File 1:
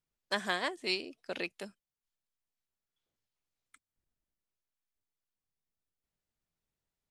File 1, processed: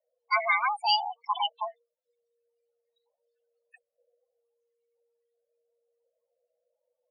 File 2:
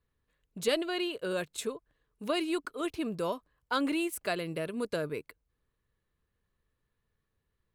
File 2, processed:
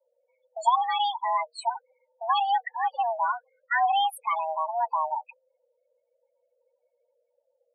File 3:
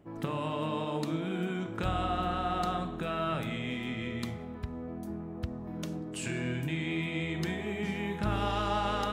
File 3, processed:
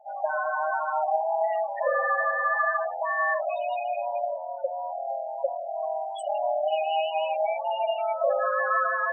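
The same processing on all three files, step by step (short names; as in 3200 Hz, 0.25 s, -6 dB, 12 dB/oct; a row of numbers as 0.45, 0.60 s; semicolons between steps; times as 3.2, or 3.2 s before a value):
frequency shift +470 Hz; loudest bins only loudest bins 8; match loudness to -27 LUFS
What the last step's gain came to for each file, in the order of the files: +12.5, +7.5, +8.5 dB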